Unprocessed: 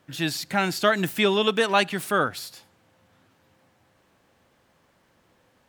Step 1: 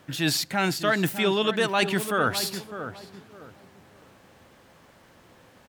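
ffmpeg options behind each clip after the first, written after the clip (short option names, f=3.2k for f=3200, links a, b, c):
-filter_complex "[0:a]areverse,acompressor=threshold=-30dB:ratio=5,areverse,asplit=2[a][b];[b]adelay=605,lowpass=f=1.1k:p=1,volume=-9dB,asplit=2[c][d];[d]adelay=605,lowpass=f=1.1k:p=1,volume=0.31,asplit=2[e][f];[f]adelay=605,lowpass=f=1.1k:p=1,volume=0.31,asplit=2[g][h];[h]adelay=605,lowpass=f=1.1k:p=1,volume=0.31[i];[a][c][e][g][i]amix=inputs=5:normalize=0,volume=8.5dB"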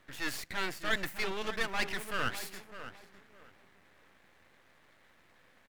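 -af "equalizer=f=125:t=o:w=1:g=-4,equalizer=f=2k:t=o:w=1:g=12,equalizer=f=4k:t=o:w=1:g=-7,aeval=exprs='max(val(0),0)':c=same,volume=-8.5dB"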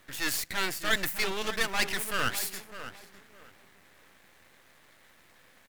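-af "highshelf=f=5k:g=11,volume=3dB"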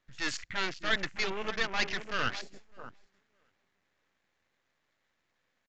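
-af "afwtdn=0.0126,aresample=16000,aresample=44100,volume=-2dB"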